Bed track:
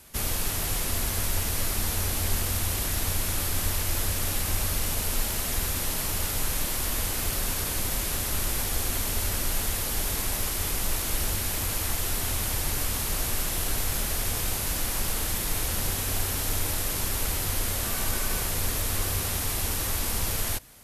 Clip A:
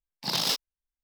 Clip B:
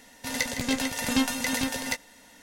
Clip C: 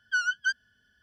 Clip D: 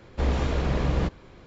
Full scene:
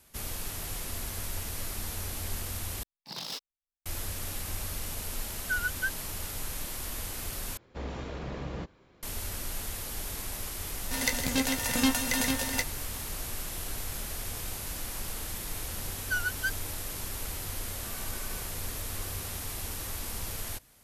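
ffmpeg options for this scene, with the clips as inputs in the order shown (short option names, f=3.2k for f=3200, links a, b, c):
-filter_complex "[3:a]asplit=2[a][b];[0:a]volume=-8.5dB[c];[a]lowpass=2k[d];[4:a]lowshelf=f=67:g=-10[e];[2:a]highshelf=f=12k:g=9[f];[b]adynamicsmooth=sensitivity=5:basefreq=1.3k[g];[c]asplit=3[h][i][j];[h]atrim=end=2.834[k];[1:a]atrim=end=1.03,asetpts=PTS-STARTPTS,volume=-11.5dB[l];[i]atrim=start=3.856:end=7.574[m];[e]atrim=end=1.46,asetpts=PTS-STARTPTS,volume=-10dB[n];[j]atrim=start=9.026[o];[d]atrim=end=1.02,asetpts=PTS-STARTPTS,volume=-3dB,afade=t=in:d=0.004:c=hsin,afade=t=out:st=1.016:d=0.004:c=hsin,adelay=236817S[p];[f]atrim=end=2.42,asetpts=PTS-STARTPTS,volume=-1.5dB,afade=t=in:d=0.004:c=hsin,afade=t=out:st=2.416:d=0.004:c=hsin,adelay=10670[q];[g]atrim=end=1.02,asetpts=PTS-STARTPTS,volume=-4dB,afade=t=in:d=0.004:c=hsin,afade=t=out:st=1.016:d=0.004:c=hsin,adelay=15980[r];[k][l]acrossfade=d=0.004:c1=hsin:c2=hsin[s];[s][m]acrossfade=d=0.004:c1=hsin:c2=hsin[t];[t][n]acrossfade=d=0.004:c1=hsin:c2=hsin[u];[u][o]acrossfade=d=0.004:c1=hsin:c2=hsin[v];[v][p][q][r]amix=inputs=4:normalize=0"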